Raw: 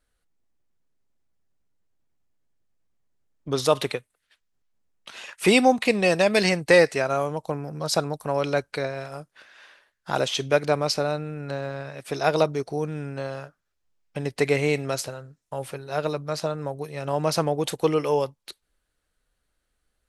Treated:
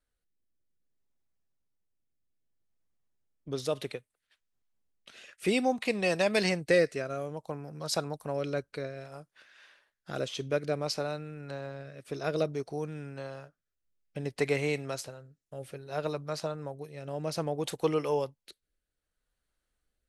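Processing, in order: rotary speaker horn 0.6 Hz; gain -6 dB

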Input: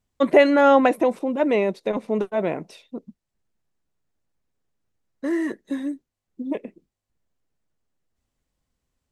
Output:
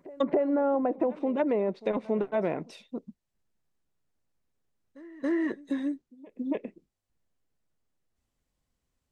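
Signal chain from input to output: treble ducked by the level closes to 750 Hz, closed at -14.5 dBFS; compressor 6:1, threshold -20 dBFS, peak gain reduction 9.5 dB; pre-echo 0.278 s -20 dB; gain -2.5 dB

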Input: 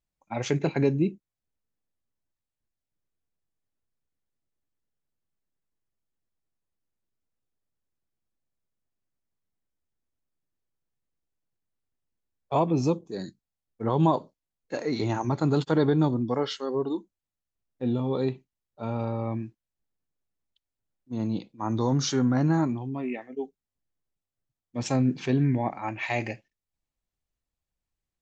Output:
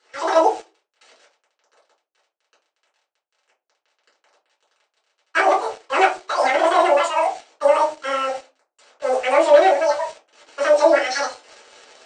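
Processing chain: delta modulation 32 kbps, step -40 dBFS; HPF 210 Hz 24 dB/oct; AGC gain up to 12.5 dB; low-pass opened by the level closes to 2000 Hz, open at -13.5 dBFS; shoebox room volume 580 m³, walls furnished, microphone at 6.1 m; in parallel at -4 dB: bit-crush 4-bit; on the sum: downsampling 8000 Hz; speed mistake 33 rpm record played at 78 rpm; gain -15.5 dB

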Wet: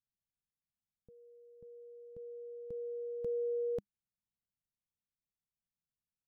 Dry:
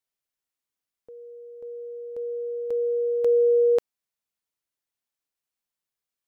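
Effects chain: EQ curve 200 Hz 0 dB, 320 Hz -17 dB, 890 Hz -25 dB; gain +4 dB

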